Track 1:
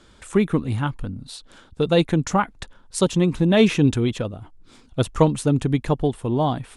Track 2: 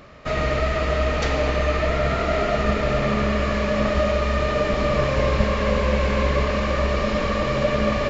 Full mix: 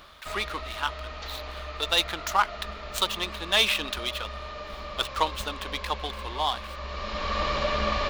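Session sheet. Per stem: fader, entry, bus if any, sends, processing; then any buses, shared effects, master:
-1.5 dB, 0.00 s, no send, median filter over 9 samples; HPF 310 Hz; tilt shelf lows -9.5 dB
-1.5 dB, 0.00 s, no send, auto duck -12 dB, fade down 0.45 s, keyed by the first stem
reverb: off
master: ten-band EQ 125 Hz -12 dB, 250 Hz -7 dB, 500 Hz -7 dB, 1000 Hz +4 dB, 2000 Hz -4 dB, 4000 Hz +7 dB, 8000 Hz -6 dB

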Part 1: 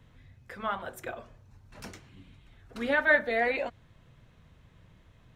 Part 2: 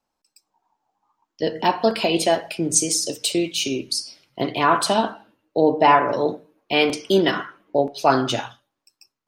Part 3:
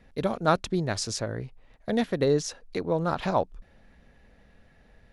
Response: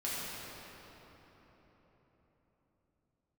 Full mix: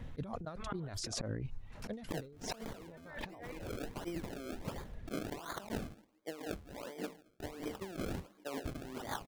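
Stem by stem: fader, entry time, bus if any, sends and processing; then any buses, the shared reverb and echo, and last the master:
-3.5 dB, 0.00 s, no send, auto duck -10 dB, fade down 0.60 s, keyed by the third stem
-12.5 dB, 0.70 s, no send, elliptic band-pass 180–5000 Hz; decimation with a swept rate 32×, swing 100% 1.4 Hz
-9.0 dB, 0.00 s, no send, reverb removal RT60 0.6 s; low shelf 460 Hz +4.5 dB; phaser 0.4 Hz, delay 3.9 ms, feedback 28%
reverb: off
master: low shelf 300 Hz +4.5 dB; auto swell 0.183 s; negative-ratio compressor -44 dBFS, ratio -1

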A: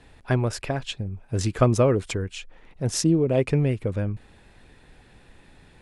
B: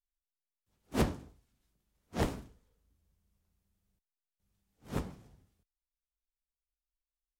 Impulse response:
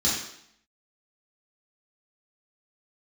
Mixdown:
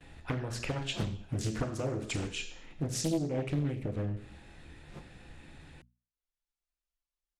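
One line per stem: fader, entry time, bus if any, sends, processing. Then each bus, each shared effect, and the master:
-1.0 dB, 0.00 s, send -16.5 dB, gate with hold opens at -45 dBFS; compressor 8:1, threshold -30 dBFS, peak gain reduction 17 dB
-3.0 dB, 0.00 s, no send, LPF 8400 Hz; comb 5.8 ms, depth 98%; auto duck -13 dB, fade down 1.50 s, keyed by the first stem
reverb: on, RT60 0.70 s, pre-delay 3 ms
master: notches 60/120/180/240 Hz; Doppler distortion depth 0.78 ms

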